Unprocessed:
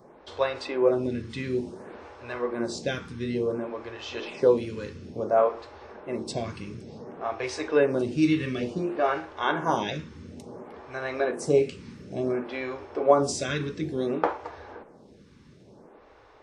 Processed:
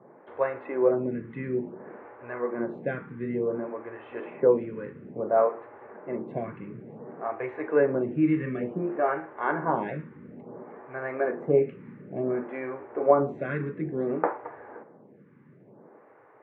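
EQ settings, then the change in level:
elliptic band-pass filter 130–2,000 Hz, stop band 40 dB
high-frequency loss of the air 140 metres
0.0 dB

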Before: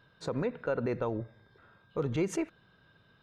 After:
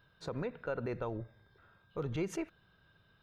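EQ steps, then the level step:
octave-band graphic EQ 125/250/500/1,000/2,000/4,000/8,000 Hz −5/−8/−6/−5/−5/−3/−10 dB
+2.5 dB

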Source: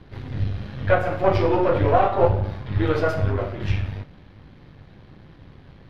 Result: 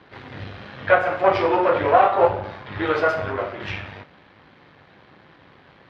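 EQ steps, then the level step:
resonant band-pass 1,500 Hz, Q 0.55
+6.0 dB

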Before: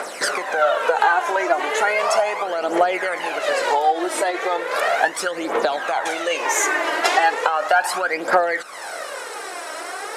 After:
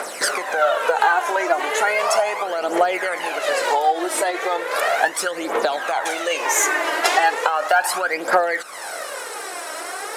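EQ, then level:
dynamic equaliser 120 Hz, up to −4 dB, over −39 dBFS, Q 0.7
high-shelf EQ 11,000 Hz +11.5 dB
0.0 dB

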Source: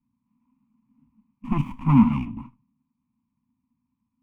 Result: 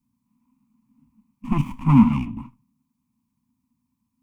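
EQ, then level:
bass and treble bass +1 dB, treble +8 dB
+1.5 dB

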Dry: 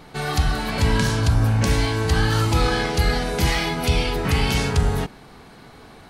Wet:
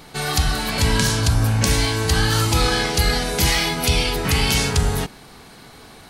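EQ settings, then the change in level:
high-shelf EQ 3,400 Hz +10.5 dB
0.0 dB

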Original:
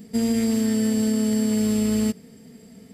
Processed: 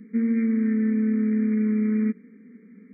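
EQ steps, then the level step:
linear-phase brick-wall band-pass 180–2,400 Hz
Butterworth band-reject 730 Hz, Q 0.73
0.0 dB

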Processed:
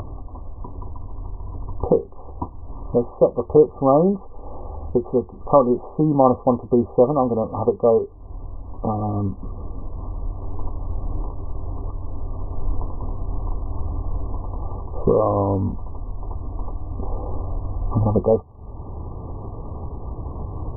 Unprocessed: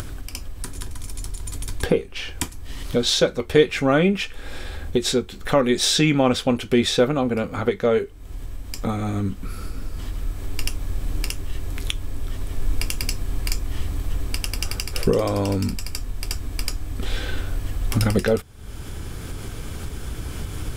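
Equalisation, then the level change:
linear-phase brick-wall low-pass 1,200 Hz
parametric band 88 Hz +3.5 dB 1 octave
parametric band 860 Hz +9 dB 1.7 octaves
−1.5 dB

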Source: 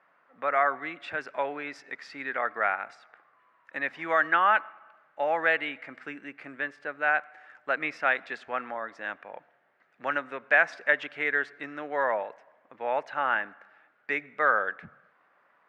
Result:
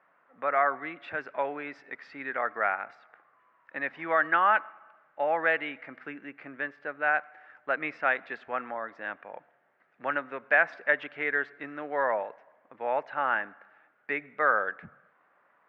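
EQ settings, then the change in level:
Bessel low-pass filter 2,400 Hz, order 2
0.0 dB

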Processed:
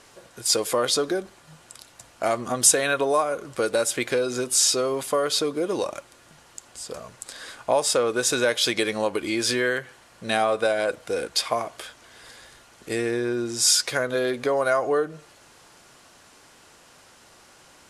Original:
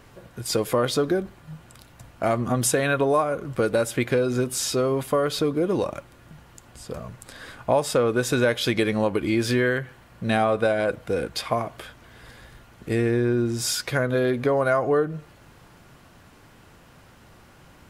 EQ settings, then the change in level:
Bessel low-pass filter 8,300 Hz, order 8
bass and treble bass −13 dB, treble +12 dB
0.0 dB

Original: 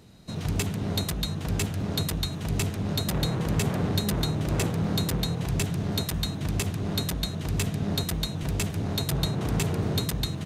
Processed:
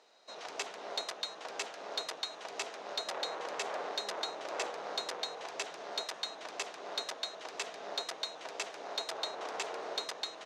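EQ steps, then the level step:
high-pass filter 550 Hz 24 dB per octave
low-pass with resonance 5,900 Hz, resonance Q 1.7
high-shelf EQ 2,200 Hz −11 dB
0.0 dB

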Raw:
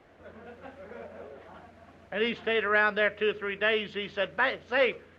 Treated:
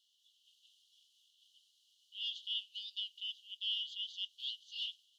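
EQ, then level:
Chebyshev high-pass filter 2,900 Hz, order 10
+2.0 dB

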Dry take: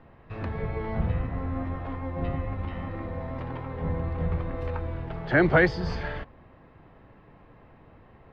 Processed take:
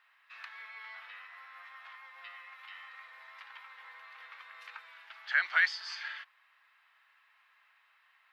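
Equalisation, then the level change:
high-pass filter 1,300 Hz 24 dB per octave
high-shelf EQ 2,300 Hz +11 dB
−5.5 dB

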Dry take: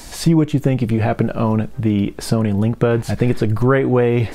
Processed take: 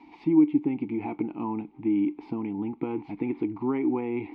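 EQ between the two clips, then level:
formant filter u
high-frequency loss of the air 300 metres
low-shelf EQ 210 Hz −8 dB
+3.5 dB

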